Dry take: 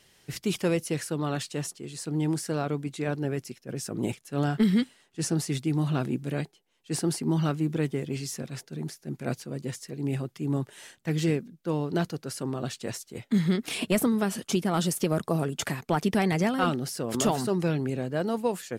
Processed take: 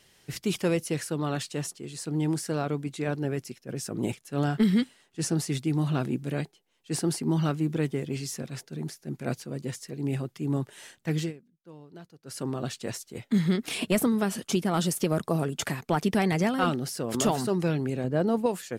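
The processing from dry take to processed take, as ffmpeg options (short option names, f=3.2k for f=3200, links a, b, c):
-filter_complex "[0:a]asettb=1/sr,asplit=3[a][b][c];[a]atrim=end=18.044[d];[b]atrim=start=18.04:end=18.46,asetpts=PTS-STARTPTS,afade=t=in:d=0.004:c=qsin,afade=t=out:st=0.416:d=0.004:c=qsin,tiltshelf=f=1.1k:g=4.5[e];[c]atrim=start=18.456[f];[d][e]acrossfade=d=0.004:c1=hsin:c2=qsin[g];[g][f]acrossfade=d=0.004:c1=qsin:c2=hsin,asplit=3[h][i][j];[h]atrim=end=11.33,asetpts=PTS-STARTPTS,afade=t=out:st=11.18:d=0.15:silence=0.105925[k];[i]atrim=start=11.33:end=12.23,asetpts=PTS-STARTPTS,volume=-19.5dB[l];[j]atrim=start=12.23,asetpts=PTS-STARTPTS,afade=t=in:d=0.15:silence=0.105925[m];[k][l][m]concat=n=3:v=0:a=1"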